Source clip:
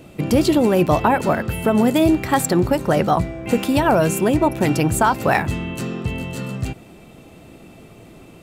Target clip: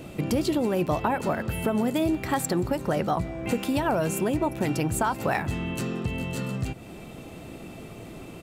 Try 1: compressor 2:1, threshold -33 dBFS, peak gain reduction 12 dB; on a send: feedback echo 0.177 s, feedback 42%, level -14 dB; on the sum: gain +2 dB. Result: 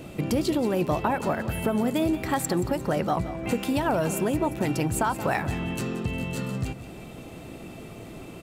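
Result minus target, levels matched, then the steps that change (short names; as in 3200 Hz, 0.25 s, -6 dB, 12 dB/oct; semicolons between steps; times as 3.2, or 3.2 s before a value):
echo-to-direct +10 dB
change: feedback echo 0.177 s, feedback 42%, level -24 dB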